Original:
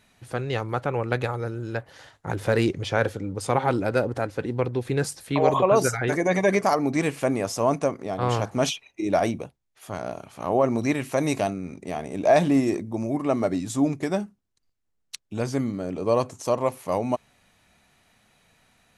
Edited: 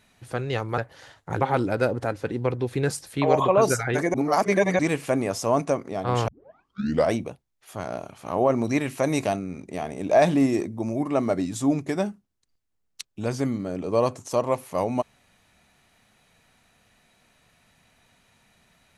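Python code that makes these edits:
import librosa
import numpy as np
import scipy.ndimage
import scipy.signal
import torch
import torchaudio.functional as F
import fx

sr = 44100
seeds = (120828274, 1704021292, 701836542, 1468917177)

y = fx.edit(x, sr, fx.cut(start_s=0.78, length_s=0.97),
    fx.cut(start_s=2.38, length_s=1.17),
    fx.reverse_span(start_s=6.28, length_s=0.65),
    fx.tape_start(start_s=8.42, length_s=0.84), tone=tone)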